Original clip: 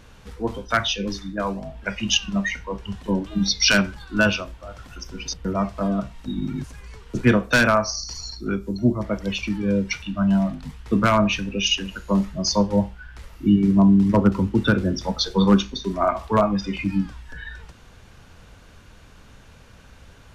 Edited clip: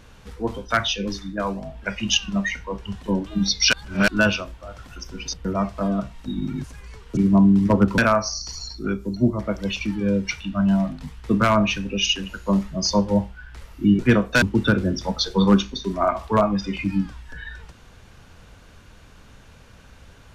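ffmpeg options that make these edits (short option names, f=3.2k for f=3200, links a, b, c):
-filter_complex "[0:a]asplit=7[a][b][c][d][e][f][g];[a]atrim=end=3.732[h];[b]atrim=start=3.728:end=4.082,asetpts=PTS-STARTPTS,areverse[i];[c]atrim=start=4.078:end=7.172[j];[d]atrim=start=13.608:end=14.422[k];[e]atrim=start=7.598:end=13.612[l];[f]atrim=start=7.168:end=7.602[m];[g]atrim=start=14.418[n];[h][i]acrossfade=d=0.004:c1=hsin:c2=hsin[o];[o][j]acrossfade=d=0.004:c1=hsin:c2=hsin[p];[p][k]acrossfade=d=0.004:c1=hsin:c2=hsin[q];[q][l]acrossfade=d=0.004:c1=hsin:c2=hsin[r];[r][m]acrossfade=d=0.004:c1=hsin:c2=hsin[s];[s][n]acrossfade=d=0.004:c1=hsin:c2=hsin"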